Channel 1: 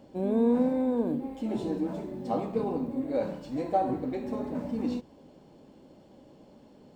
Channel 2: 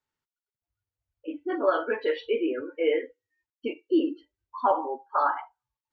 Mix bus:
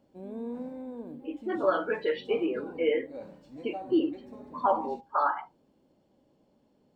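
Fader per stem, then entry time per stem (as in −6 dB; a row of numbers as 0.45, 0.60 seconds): −13.0, −2.0 decibels; 0.00, 0.00 seconds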